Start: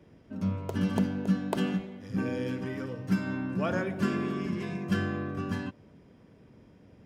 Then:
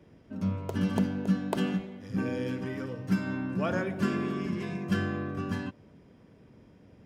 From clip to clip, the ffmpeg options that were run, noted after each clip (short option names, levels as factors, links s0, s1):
-af anull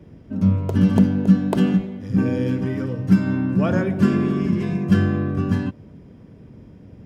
-af "lowshelf=f=350:g=11,volume=1.58"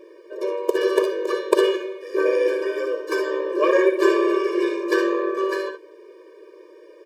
-af "aeval=exprs='0.668*(cos(1*acos(clip(val(0)/0.668,-1,1)))-cos(1*PI/2))+0.0531*(cos(6*acos(clip(val(0)/0.668,-1,1)))-cos(6*PI/2))':c=same,aecho=1:1:60|71:0.335|0.299,afftfilt=real='re*eq(mod(floor(b*sr/1024/310),2),1)':imag='im*eq(mod(floor(b*sr/1024/310),2),1)':win_size=1024:overlap=0.75,volume=2.66"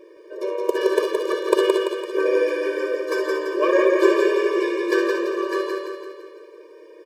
-af "aecho=1:1:169|338|507|676|845|1014|1183:0.668|0.348|0.181|0.094|0.0489|0.0254|0.0132,volume=0.891"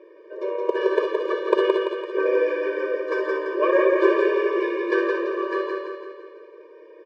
-af "highpass=330,lowpass=2500"